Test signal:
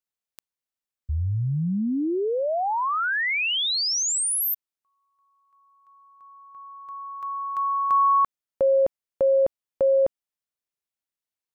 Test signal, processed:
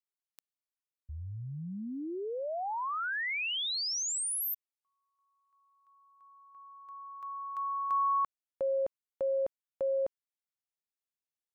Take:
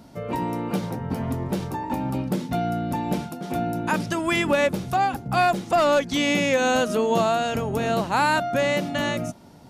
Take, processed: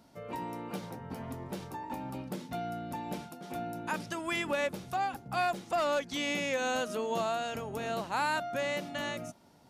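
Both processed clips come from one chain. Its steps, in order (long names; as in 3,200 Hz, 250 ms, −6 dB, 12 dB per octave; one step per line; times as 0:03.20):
low-shelf EQ 360 Hz −7 dB
level −9 dB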